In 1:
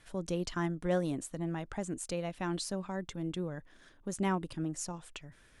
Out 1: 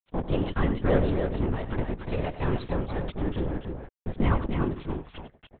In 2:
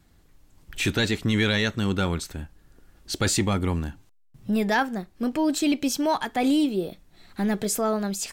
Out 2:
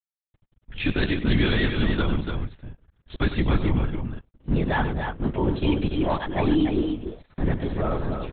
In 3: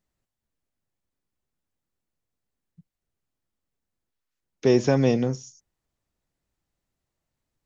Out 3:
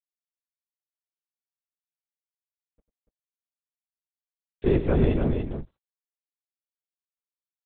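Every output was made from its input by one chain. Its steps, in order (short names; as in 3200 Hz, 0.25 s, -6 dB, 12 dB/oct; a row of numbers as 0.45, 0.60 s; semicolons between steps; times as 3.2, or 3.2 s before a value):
low shelf 190 Hz +8.5 dB; crossover distortion -41 dBFS; LPC vocoder at 8 kHz whisper; loudspeakers at several distances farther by 33 m -12 dB, 99 m -6 dB; normalise peaks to -9 dBFS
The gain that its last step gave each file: +7.0, -2.0, -4.5 dB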